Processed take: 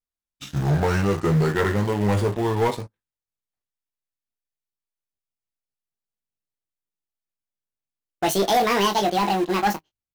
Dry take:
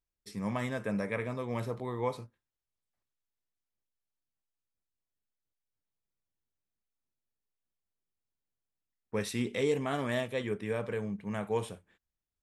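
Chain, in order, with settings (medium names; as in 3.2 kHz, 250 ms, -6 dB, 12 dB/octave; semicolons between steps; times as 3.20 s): gliding tape speed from 62% -> 183%; doubling 20 ms -6.5 dB; in parallel at -6.5 dB: small samples zeroed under -36.5 dBFS; on the sum: waveshaping leveller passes 3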